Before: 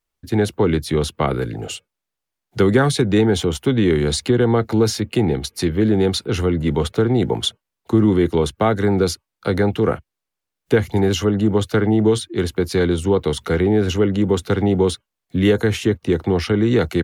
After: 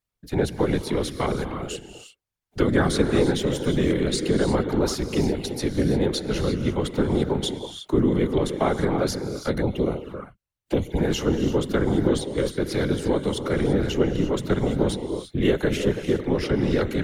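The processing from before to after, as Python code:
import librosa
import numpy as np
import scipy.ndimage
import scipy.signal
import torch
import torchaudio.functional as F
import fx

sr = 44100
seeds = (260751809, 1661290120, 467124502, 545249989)

y = fx.rev_gated(x, sr, seeds[0], gate_ms=370, shape='rising', drr_db=7.5)
y = fx.env_flanger(y, sr, rest_ms=5.8, full_db=-16.0, at=(9.6, 10.97), fade=0.02)
y = fx.whisperise(y, sr, seeds[1])
y = y * 10.0 ** (-5.5 / 20.0)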